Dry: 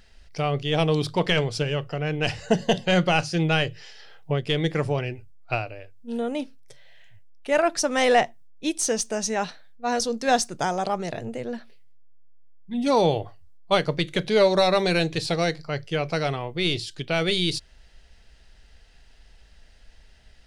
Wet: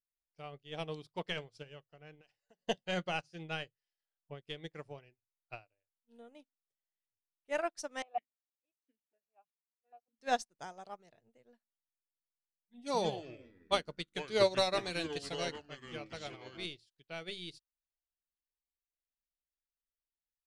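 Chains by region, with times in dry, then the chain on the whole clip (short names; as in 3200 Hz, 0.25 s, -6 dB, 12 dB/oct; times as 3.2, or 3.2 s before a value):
2.21–2.66 bell 82 Hz -13.5 dB 2.2 oct + compressor 4:1, threshold -30 dBFS
8.02–10.19 air absorption 180 m + vowel sequencer 6.3 Hz
12.79–16.66 dynamic EQ 7900 Hz, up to +8 dB, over -46 dBFS, Q 0.73 + echoes that change speed 0.152 s, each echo -5 st, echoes 3, each echo -6 dB
whole clip: low shelf 340 Hz -5 dB; upward expander 2.5:1, over -44 dBFS; gain -6.5 dB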